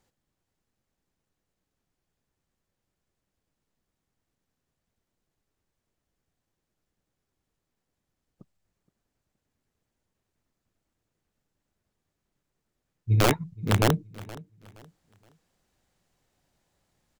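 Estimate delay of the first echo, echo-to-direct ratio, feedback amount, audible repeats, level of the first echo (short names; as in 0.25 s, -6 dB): 0.471 s, -19.5 dB, 32%, 2, -20.0 dB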